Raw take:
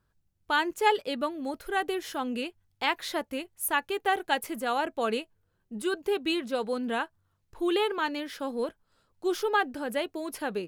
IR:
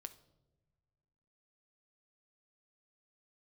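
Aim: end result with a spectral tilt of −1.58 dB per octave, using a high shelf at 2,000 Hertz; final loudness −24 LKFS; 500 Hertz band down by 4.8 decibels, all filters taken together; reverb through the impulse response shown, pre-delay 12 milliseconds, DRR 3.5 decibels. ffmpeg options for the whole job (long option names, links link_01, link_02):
-filter_complex "[0:a]equalizer=frequency=500:width_type=o:gain=-7,highshelf=frequency=2000:gain=8,asplit=2[link_01][link_02];[1:a]atrim=start_sample=2205,adelay=12[link_03];[link_02][link_03]afir=irnorm=-1:irlink=0,volume=1.5dB[link_04];[link_01][link_04]amix=inputs=2:normalize=0,volume=3.5dB"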